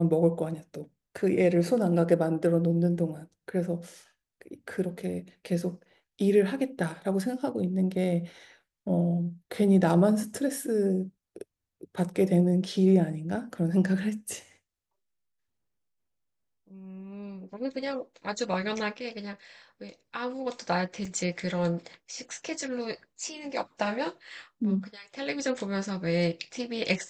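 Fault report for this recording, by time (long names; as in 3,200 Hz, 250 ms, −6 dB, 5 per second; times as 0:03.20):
0:21.05: drop-out 3.6 ms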